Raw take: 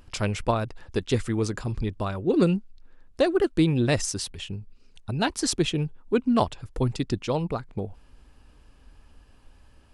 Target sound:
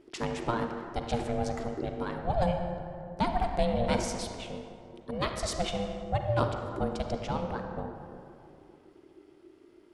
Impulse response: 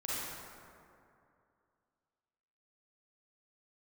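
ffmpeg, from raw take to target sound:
-filter_complex "[0:a]asplit=2[s0][s1];[1:a]atrim=start_sample=2205,lowpass=6200[s2];[s1][s2]afir=irnorm=-1:irlink=0,volume=0.501[s3];[s0][s3]amix=inputs=2:normalize=0,aeval=exprs='val(0)*sin(2*PI*350*n/s)':c=same,volume=0.501"

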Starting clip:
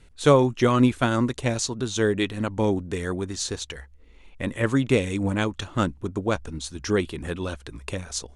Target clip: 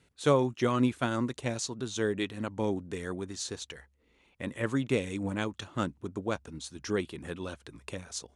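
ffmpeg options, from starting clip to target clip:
-af "highpass=100,volume=0.422"

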